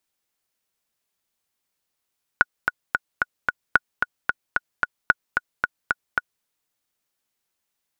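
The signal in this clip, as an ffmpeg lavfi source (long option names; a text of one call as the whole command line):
ffmpeg -f lavfi -i "aevalsrc='pow(10,(-1-5.5*gte(mod(t,5*60/223),60/223))/20)*sin(2*PI*1460*mod(t,60/223))*exp(-6.91*mod(t,60/223)/0.03)':duration=4.03:sample_rate=44100" out.wav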